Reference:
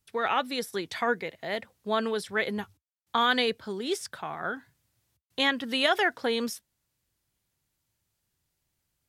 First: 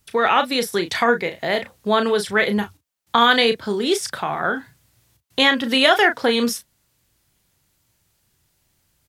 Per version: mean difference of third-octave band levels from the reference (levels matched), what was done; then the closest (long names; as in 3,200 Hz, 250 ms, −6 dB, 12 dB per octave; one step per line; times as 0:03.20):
2.0 dB: double-tracking delay 34 ms −9 dB
in parallel at −2 dB: downward compressor, threshold −34 dBFS, peak gain reduction 14.5 dB
on the sum: level +7.5 dB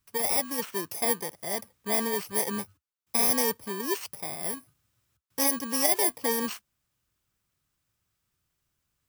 10.0 dB: samples in bit-reversed order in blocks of 32 samples
parametric band 1,200 Hz +5.5 dB 0.66 octaves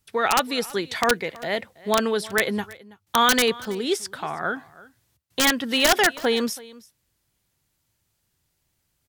4.0 dB: wrap-around overflow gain 14.5 dB
on a send: single-tap delay 327 ms −21 dB
on the sum: level +6 dB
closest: first